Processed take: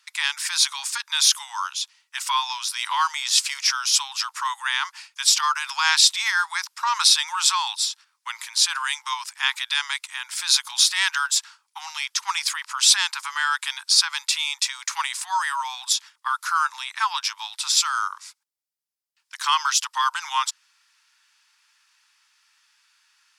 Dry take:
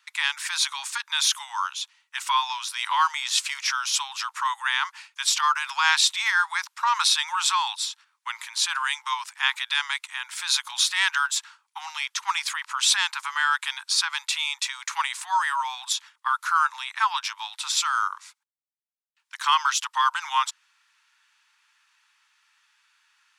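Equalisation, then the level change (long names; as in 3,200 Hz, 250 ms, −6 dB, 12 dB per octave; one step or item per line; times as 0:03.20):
parametric band 5,000 Hz +6 dB 0.36 octaves
parametric band 13,000 Hz +7.5 dB 1.9 octaves
−1.0 dB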